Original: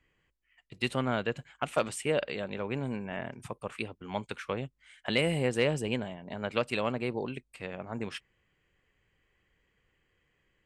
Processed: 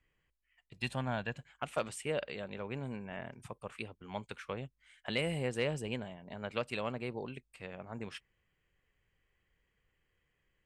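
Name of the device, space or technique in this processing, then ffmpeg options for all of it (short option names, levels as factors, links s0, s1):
low shelf boost with a cut just above: -filter_complex "[0:a]asettb=1/sr,asplit=3[s0][s1][s2];[s0]atrim=end=0.764[s3];[s1]atrim=start=0.76:end=1.35,asetpts=PTS-STARTPTS,afade=t=in:d=0.004:c=qsin,afade=t=out:st=0.586:d=0.004:c=qsin,aecho=1:1:1.2:0.51,atrim=end_sample=26019[s4];[s2]atrim=start=1.346[s5];[s3][s4]acrossfade=d=0.004:c1=hsin:c2=qsin[s6];[s6][s5]acrossfade=d=0.004:c1=qsin:c2=hsin,lowshelf=f=61:g=5.5,equalizer=f=300:t=o:w=0.77:g=-2.5,volume=0.501"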